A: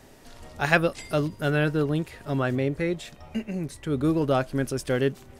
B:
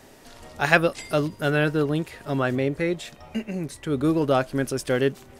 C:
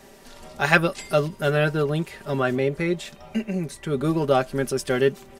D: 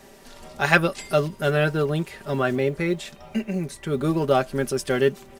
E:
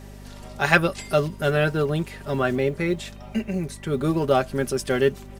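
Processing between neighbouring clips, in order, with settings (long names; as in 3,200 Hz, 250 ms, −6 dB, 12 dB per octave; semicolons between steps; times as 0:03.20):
low-shelf EQ 140 Hz −7 dB; level +3 dB
comb filter 5.1 ms, depth 57%
log-companded quantiser 8 bits
hum with harmonics 50 Hz, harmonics 5, −42 dBFS −4 dB per octave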